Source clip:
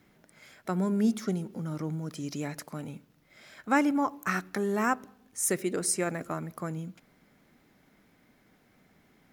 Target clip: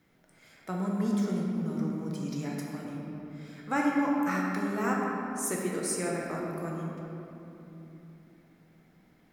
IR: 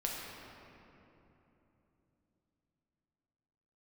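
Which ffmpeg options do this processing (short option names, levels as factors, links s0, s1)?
-filter_complex "[1:a]atrim=start_sample=2205[s0];[0:a][s0]afir=irnorm=-1:irlink=0,volume=0.596"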